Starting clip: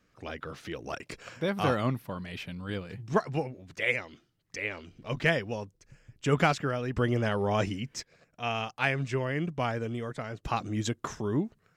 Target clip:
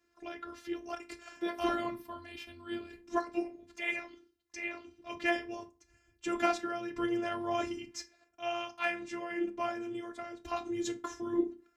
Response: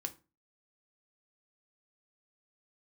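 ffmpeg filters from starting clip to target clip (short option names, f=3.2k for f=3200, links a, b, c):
-filter_complex "[1:a]atrim=start_sample=2205[a];[0:a][a]afir=irnorm=-1:irlink=0,afftfilt=real='hypot(re,im)*cos(PI*b)':imag='0':win_size=512:overlap=0.75,highpass=42"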